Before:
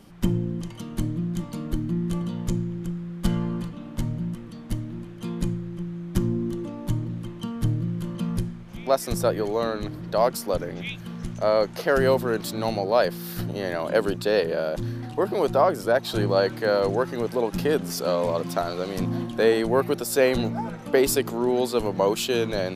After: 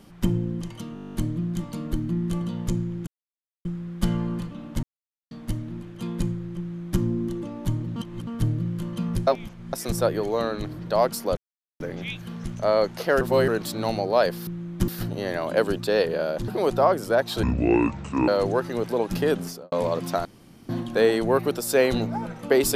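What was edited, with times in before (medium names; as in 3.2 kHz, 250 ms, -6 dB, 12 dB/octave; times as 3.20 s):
0.94 s: stutter 0.02 s, 11 plays
2.87 s: insert silence 0.58 s
4.05–4.53 s: mute
5.82–6.23 s: copy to 13.26 s
7.18–7.49 s: reverse
8.49–8.95 s: reverse
10.59 s: insert silence 0.43 s
12.00–12.27 s: reverse
14.86–15.25 s: delete
16.20–16.71 s: speed 60%
17.82–18.15 s: studio fade out
18.68–19.12 s: room tone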